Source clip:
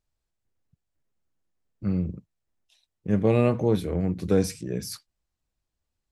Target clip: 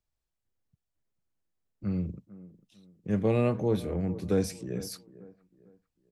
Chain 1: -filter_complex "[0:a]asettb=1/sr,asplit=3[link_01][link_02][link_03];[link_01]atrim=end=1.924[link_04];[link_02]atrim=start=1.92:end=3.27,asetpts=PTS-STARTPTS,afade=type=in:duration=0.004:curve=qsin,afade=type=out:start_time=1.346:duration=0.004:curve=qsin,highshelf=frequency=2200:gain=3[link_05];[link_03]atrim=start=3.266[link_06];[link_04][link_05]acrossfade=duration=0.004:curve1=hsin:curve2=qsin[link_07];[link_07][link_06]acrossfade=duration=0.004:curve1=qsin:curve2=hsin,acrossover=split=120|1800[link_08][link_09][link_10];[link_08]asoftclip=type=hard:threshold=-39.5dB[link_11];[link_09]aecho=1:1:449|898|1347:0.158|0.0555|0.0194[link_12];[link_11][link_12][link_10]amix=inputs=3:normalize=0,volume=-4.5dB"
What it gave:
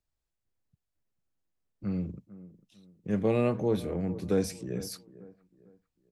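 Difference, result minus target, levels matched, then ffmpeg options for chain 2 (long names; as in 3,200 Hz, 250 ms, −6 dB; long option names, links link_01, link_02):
hard clipping: distortion +22 dB
-filter_complex "[0:a]asettb=1/sr,asplit=3[link_01][link_02][link_03];[link_01]atrim=end=1.924[link_04];[link_02]atrim=start=1.92:end=3.27,asetpts=PTS-STARTPTS,afade=type=in:duration=0.004:curve=qsin,afade=type=out:start_time=1.346:duration=0.004:curve=qsin,highshelf=frequency=2200:gain=3[link_05];[link_03]atrim=start=3.266[link_06];[link_04][link_05]acrossfade=duration=0.004:curve1=hsin:curve2=qsin[link_07];[link_07][link_06]acrossfade=duration=0.004:curve1=qsin:curve2=hsin,acrossover=split=120|1800[link_08][link_09][link_10];[link_08]asoftclip=type=hard:threshold=-28dB[link_11];[link_09]aecho=1:1:449|898|1347:0.158|0.0555|0.0194[link_12];[link_11][link_12][link_10]amix=inputs=3:normalize=0,volume=-4.5dB"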